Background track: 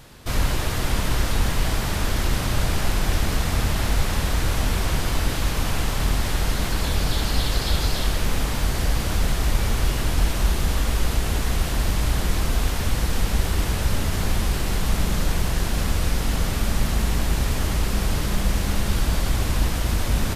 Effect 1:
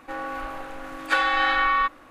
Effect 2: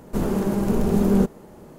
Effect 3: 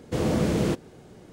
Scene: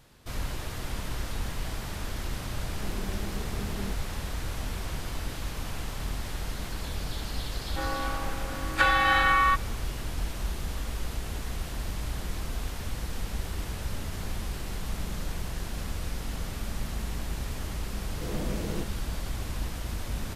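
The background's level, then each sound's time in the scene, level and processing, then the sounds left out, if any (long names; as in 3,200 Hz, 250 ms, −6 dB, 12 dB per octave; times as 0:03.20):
background track −11.5 dB
0:02.67: mix in 2 −13 dB + downward compressor 2 to 1, threshold −27 dBFS
0:07.68: mix in 1 −1 dB
0:18.09: mix in 3 −11 dB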